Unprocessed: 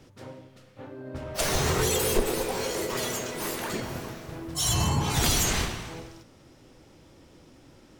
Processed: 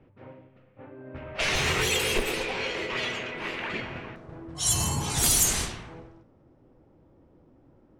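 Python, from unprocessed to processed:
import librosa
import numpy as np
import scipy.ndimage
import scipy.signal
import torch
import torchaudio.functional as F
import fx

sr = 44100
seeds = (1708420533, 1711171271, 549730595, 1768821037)

y = fx.env_lowpass(x, sr, base_hz=850.0, full_db=-20.5)
y = fx.peak_eq(y, sr, hz=fx.steps((0.0, 2500.0), (4.16, 10000.0)), db=14.0, octaves=1.2)
y = y * librosa.db_to_amplitude(-4.0)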